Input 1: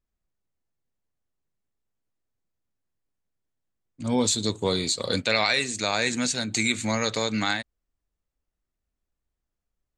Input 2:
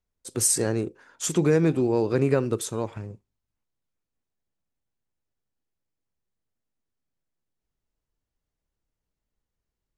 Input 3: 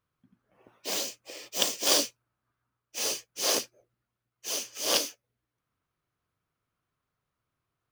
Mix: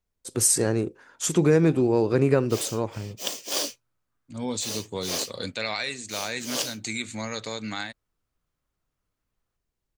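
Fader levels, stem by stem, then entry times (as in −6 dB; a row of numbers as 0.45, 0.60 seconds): −7.0, +1.5, −4.0 decibels; 0.30, 0.00, 1.65 seconds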